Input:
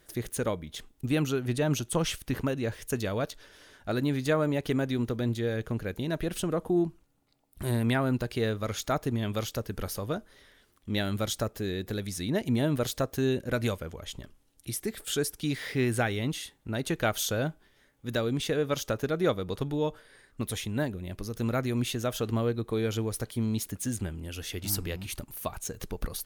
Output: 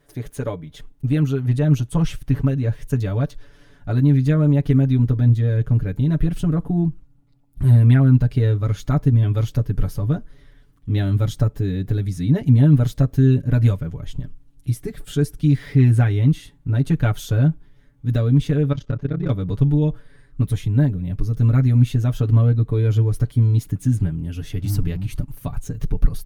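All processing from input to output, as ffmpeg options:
-filter_complex "[0:a]asettb=1/sr,asplit=3[s0][s1][s2];[s0]atrim=end=18.724[s3];[s1]atrim=start=18.72:end=19.3,asetpts=PTS-STARTPTS,afade=t=in:d=0.004:c=qsin,afade=t=out:st=0.576:d=0.004:c=qsin,lowpass=4300,tremolo=f=33:d=1,asoftclip=type=hard:threshold=0.0841[s4];[s2]atrim=start=19.296[s5];[s3][s4]acrossfade=d=0.004:c1=hsin:c2=qsin[s6];[s6][s5]acrossfade=d=0.004:c1=qsin:c2=hsin,highshelf=f=2000:g=-10.5,aecho=1:1:7:0.92,asubboost=boost=5.5:cutoff=200,volume=1.19"

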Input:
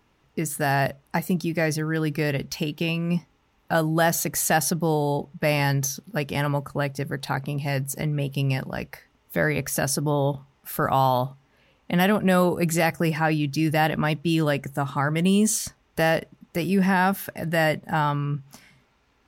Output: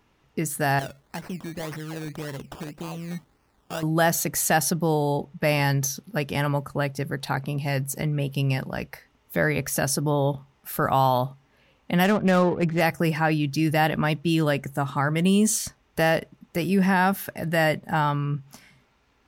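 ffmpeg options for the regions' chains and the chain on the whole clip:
-filter_complex "[0:a]asettb=1/sr,asplit=3[s0][s1][s2];[s0]atrim=end=0.794[s3];[s1]atrim=start=0.79:end=3.83,asetpts=PTS-STARTPTS,afade=t=in:d=0.004:c=qsin,afade=t=out:st=3.036:d=0.004:c=qsin,acompressor=threshold=0.00501:ratio=1.5:attack=3.2:release=140:knee=1:detection=peak,acrusher=samples=17:mix=1:aa=0.000001:lfo=1:lforange=10.2:lforate=1.8[s4];[s2]atrim=start=3.826[s5];[s3][s4]acrossfade=d=0.004:c1=hsin:c2=qsin[s6];[s6][s5]acrossfade=d=0.004:c1=qsin:c2=hsin,asettb=1/sr,asplit=3[s7][s8][s9];[s7]atrim=end=12.044[s10];[s8]atrim=start=12.04:end=12.81,asetpts=PTS-STARTPTS,afade=t=in:d=0.004:c=qsin,afade=t=out:st=0.766:d=0.004:c=qsin,lowpass=3900,adynamicsmooth=sensitivity=4:basefreq=880[s11];[s9]atrim=start=12.806[s12];[s10][s11]acrossfade=d=0.004:c1=hsin:c2=qsin[s13];[s13][s12]acrossfade=d=0.004:c1=qsin:c2=hsin"

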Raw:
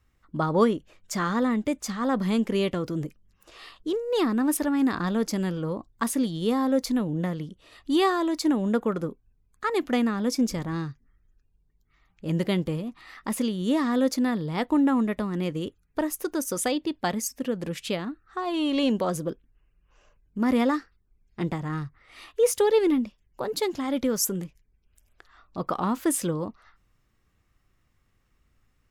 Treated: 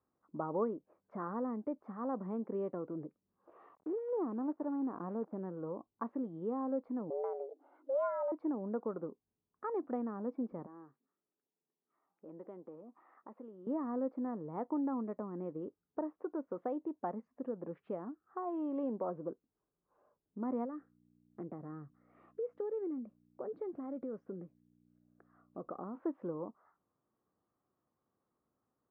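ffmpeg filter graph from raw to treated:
-filter_complex "[0:a]asettb=1/sr,asplit=3[s0][s1][s2];[s0]atrim=end=3.754[s3];[s1]atrim=start=3.75:end=5.39,asetpts=PTS-STARTPTS,afade=t=in:d=0.004:c=qsin,afade=t=out:st=1.636:d=0.004:c=qsin,lowpass=1400,acrusher=bits=7:dc=4:mix=0:aa=0.000001[s4];[s2]atrim=start=5.386[s5];[s3][s4]acrossfade=d=0.004:c1=hsin:c2=qsin[s6];[s6][s5]acrossfade=d=0.004:c1=qsin:c2=hsin,asettb=1/sr,asplit=3[s7][s8][s9];[s7]atrim=end=7.104[s10];[s8]atrim=start=7.1:end=8.32,asetpts=PTS-STARTPTS,afade=t=in:d=0.004:c=qsin,afade=t=out:st=1.216:d=0.004:c=qsin,afreqshift=260,equalizer=f=2500:t=o:w=0.32:g=-3.5[s11];[s9]atrim=start=8.316[s12];[s10][s11]acrossfade=d=0.004:c1=hsin:c2=qsin[s13];[s13][s12]acrossfade=d=0.004:c1=qsin:c2=hsin,asettb=1/sr,asplit=3[s14][s15][s16];[s14]atrim=end=10.664[s17];[s15]atrim=start=10.66:end=13.67,asetpts=PTS-STARTPTS,afade=t=in:d=0.004:c=qsin,afade=t=out:st=3.006:d=0.004:c=qsin,highpass=280,acompressor=threshold=0.00398:ratio=2:attack=3.2:release=140:knee=1:detection=peak[s18];[s16]atrim=start=13.666[s19];[s17][s18]acrossfade=d=0.004:c1=hsin:c2=qsin[s20];[s20][s19]acrossfade=d=0.004:c1=qsin:c2=hsin,asettb=1/sr,asplit=3[s21][s22][s23];[s21]atrim=end=20.654[s24];[s22]atrim=start=20.65:end=25.95,asetpts=PTS-STARTPTS,afade=t=in:d=0.004:c=qsin,afade=t=out:st=5.296:d=0.004:c=qsin,aeval=exprs='val(0)+0.00251*(sin(2*PI*60*n/s)+sin(2*PI*2*60*n/s)/2+sin(2*PI*3*60*n/s)/3+sin(2*PI*4*60*n/s)/4+sin(2*PI*5*60*n/s)/5)':c=same,acompressor=threshold=0.0398:ratio=2.5:attack=3.2:release=140:knee=1:detection=peak,equalizer=f=930:t=o:w=0.44:g=-11[s25];[s23]atrim=start=25.946[s26];[s24][s25]acrossfade=d=0.004:c1=hsin:c2=qsin[s27];[s27][s26]acrossfade=d=0.004:c1=qsin:c2=hsin,lowpass=f=1100:w=0.5412,lowpass=f=1100:w=1.3066,acompressor=threshold=0.0158:ratio=1.5,highpass=260,volume=0.562"

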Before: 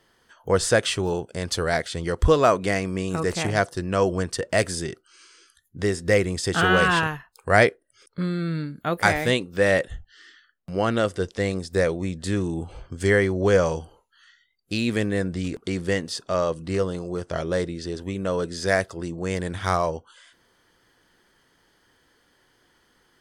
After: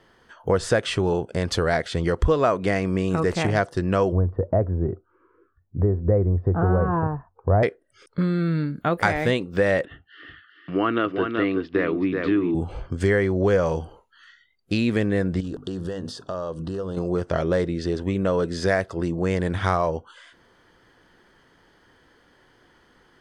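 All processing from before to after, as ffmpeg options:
-filter_complex "[0:a]asettb=1/sr,asplit=3[s0][s1][s2];[s0]atrim=end=4.124[s3];[s1]atrim=start=4.12:end=7.63,asetpts=PTS-STARTPTS,afade=t=in:d=0.004:c=qsin,afade=t=out:st=3.506:d=0.004:c=qsin,lowpass=f=1000:w=0.5412,lowpass=f=1000:w=1.3066,equalizer=f=90:t=o:w=0.51:g=11.5[s4];[s2]atrim=start=7.626[s5];[s3][s4]acrossfade=d=0.004:c1=hsin:c2=qsin[s6];[s6][s5]acrossfade=d=0.004:c1=qsin:c2=hsin,asettb=1/sr,asplit=3[s7][s8][s9];[s7]atrim=end=9.854[s10];[s8]atrim=start=9.85:end=12.55,asetpts=PTS-STARTPTS,afade=t=in:d=0.004:c=qsin,afade=t=out:st=2.696:d=0.004:c=qsin,highpass=200,equalizer=f=210:t=q:w=4:g=-7,equalizer=f=300:t=q:w=4:g=10,equalizer=f=540:t=q:w=4:g=-10,equalizer=f=810:t=q:w=4:g=-7,equalizer=f=1200:t=q:w=4:g=6,equalizer=f=2800:t=q:w=4:g=5,lowpass=f=3300:w=0.5412,lowpass=f=3300:w=1.3066,aecho=1:1:378:0.422,atrim=end_sample=119070[s11];[s9]atrim=start=12.546[s12];[s10][s11]acrossfade=d=0.004:c1=hsin:c2=qsin[s13];[s13][s12]acrossfade=d=0.004:c1=qsin:c2=hsin,asettb=1/sr,asplit=3[s14][s15][s16];[s14]atrim=end=15.404[s17];[s15]atrim=start=15.4:end=16.97,asetpts=PTS-STARTPTS,afade=t=in:d=0.004:c=qsin,afade=t=out:st=1.566:d=0.004:c=qsin,bandreject=f=50:t=h:w=6,bandreject=f=100:t=h:w=6,bandreject=f=150:t=h:w=6,bandreject=f=200:t=h:w=6,bandreject=f=250:t=h:w=6,bandreject=f=300:t=h:w=6,acompressor=threshold=0.0224:ratio=6:attack=3.2:release=140:knee=1:detection=peak,asuperstop=centerf=2200:order=4:qfactor=2[s18];[s16]atrim=start=16.966[s19];[s17][s18]acrossfade=d=0.004:c1=hsin:c2=qsin[s20];[s20][s19]acrossfade=d=0.004:c1=qsin:c2=hsin,lowpass=f=2200:p=1,acompressor=threshold=0.0447:ratio=2.5,volume=2.24"

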